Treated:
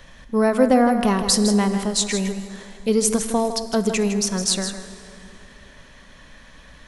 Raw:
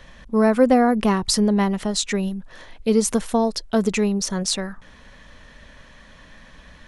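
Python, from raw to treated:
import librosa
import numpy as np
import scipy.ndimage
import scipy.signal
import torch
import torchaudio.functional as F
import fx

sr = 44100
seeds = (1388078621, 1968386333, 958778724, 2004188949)

y = fx.high_shelf(x, sr, hz=6300.0, db=7.5)
y = y + 10.0 ** (-9.5 / 20.0) * np.pad(y, (int(159 * sr / 1000.0), 0))[:len(y)]
y = fx.rev_plate(y, sr, seeds[0], rt60_s=3.1, hf_ratio=0.65, predelay_ms=0, drr_db=11.5)
y = y * librosa.db_to_amplitude(-1.0)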